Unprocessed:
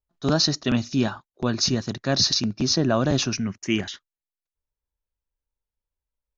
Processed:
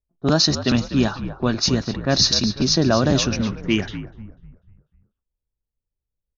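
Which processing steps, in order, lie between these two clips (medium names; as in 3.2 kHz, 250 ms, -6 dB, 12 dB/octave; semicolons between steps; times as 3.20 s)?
frequency-shifting echo 247 ms, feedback 48%, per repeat -60 Hz, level -11 dB; level-controlled noise filter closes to 480 Hz, open at -16.5 dBFS; trim +3.5 dB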